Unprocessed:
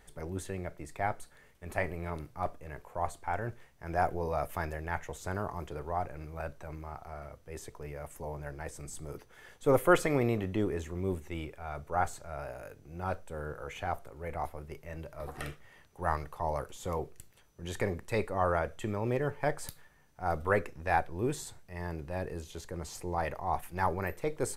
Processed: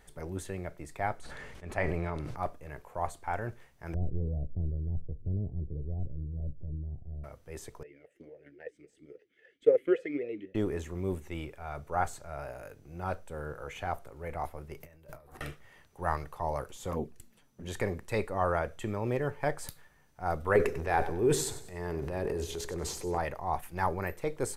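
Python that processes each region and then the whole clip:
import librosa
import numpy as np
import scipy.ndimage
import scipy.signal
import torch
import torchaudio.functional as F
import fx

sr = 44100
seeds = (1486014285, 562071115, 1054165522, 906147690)

y = fx.chain(x, sr, fx.air_absorb(metres=59.0),
    fx.sustainer(db_per_s=20.0), at=(1.19, 2.36))
y = fx.chain(y, sr, fx.gaussian_blur(sigma=23.0),
    fx.low_shelf(hz=160.0, db=11.0), at=(3.94, 7.24))
y = fx.chain(y, sr, fx.transient(attack_db=11, sustain_db=-1),
    fx.vowel_sweep(vowels='e-i', hz=3.7), at=(7.83, 10.55))
y = fx.chain(y, sr, fx.high_shelf(hz=12000.0, db=11.0),
    fx.over_compress(threshold_db=-52.0, ratio=-1.0),
    fx.band_widen(depth_pct=70), at=(14.8, 15.41))
y = fx.chain(y, sr, fx.peak_eq(hz=230.0, db=15.0, octaves=0.54),
    fx.env_flanger(rest_ms=10.2, full_db=-28.5), at=(16.91, 17.68))
y = fx.chain(y, sr, fx.peak_eq(hz=410.0, db=10.5, octaves=0.43),
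    fx.transient(attack_db=-3, sustain_db=9),
    fx.echo_feedback(ms=96, feedback_pct=37, wet_db=-13.0), at=(20.55, 23.18))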